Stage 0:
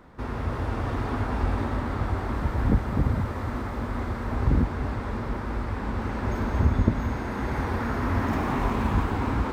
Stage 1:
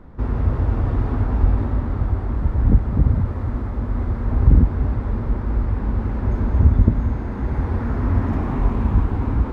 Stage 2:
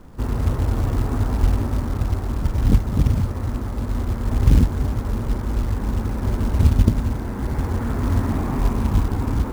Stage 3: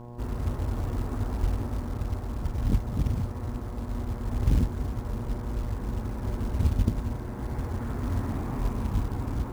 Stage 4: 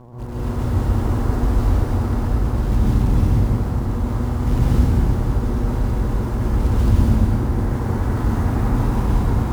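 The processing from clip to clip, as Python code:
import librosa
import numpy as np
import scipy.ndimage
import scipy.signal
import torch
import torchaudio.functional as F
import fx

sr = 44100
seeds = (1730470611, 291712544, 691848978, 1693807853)

y1 = fx.tilt_eq(x, sr, slope=-3.0)
y1 = fx.rider(y1, sr, range_db=5, speed_s=2.0)
y1 = y1 * librosa.db_to_amplitude(-3.5)
y2 = fx.peak_eq(y1, sr, hz=62.0, db=-3.5, octaves=0.6)
y2 = fx.quant_companded(y2, sr, bits=6)
y3 = fx.dmg_buzz(y2, sr, base_hz=120.0, harmonics=9, level_db=-34.0, tilt_db=-5, odd_only=False)
y3 = y3 * librosa.db_to_amplitude(-9.0)
y4 = fx.vibrato(y3, sr, rate_hz=13.0, depth_cents=76.0)
y4 = fx.rev_plate(y4, sr, seeds[0], rt60_s=3.6, hf_ratio=0.55, predelay_ms=115, drr_db=-10.0)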